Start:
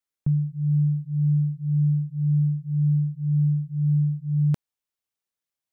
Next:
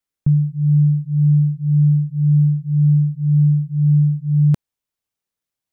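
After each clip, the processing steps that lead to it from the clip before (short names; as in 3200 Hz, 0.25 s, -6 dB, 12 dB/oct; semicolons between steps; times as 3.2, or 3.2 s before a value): low shelf 310 Hz +6 dB; gain +2.5 dB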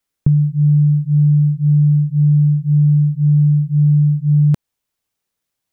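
compressor, threshold -17 dBFS, peak gain reduction 6 dB; gain +7 dB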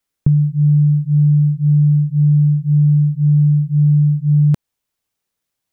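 nothing audible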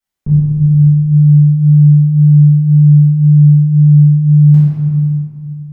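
reverb RT60 2.1 s, pre-delay 4 ms, DRR -11.5 dB; gain -10.5 dB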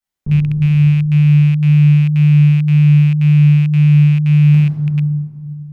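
rattling part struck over -8 dBFS, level -18 dBFS; gain -3 dB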